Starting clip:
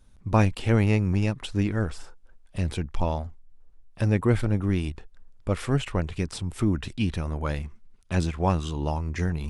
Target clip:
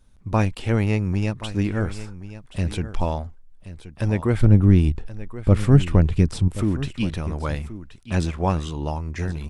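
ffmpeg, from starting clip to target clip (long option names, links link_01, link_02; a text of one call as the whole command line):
ffmpeg -i in.wav -filter_complex "[0:a]asettb=1/sr,asplit=3[link_01][link_02][link_03];[link_01]atrim=end=4.414[link_04];[link_02]atrim=start=4.41:end=6.48,asetpts=PTS-STARTPTS,afade=type=in:duration=0.004:curve=qsin,afade=type=out:start_time=2.066:duration=0.004:curve=qsin,lowshelf=frequency=370:gain=12[link_05];[link_03]atrim=start=6.476[link_06];[link_04][link_05]acrossfade=duration=0.004:curve1=hsin:curve2=qsin[link_07];[link_07][link_06]acrossfade=duration=0.004:curve1=qsin:curve2=hsin,dynaudnorm=framelen=460:gausssize=7:maxgain=4.5dB,aecho=1:1:1077:0.188" out.wav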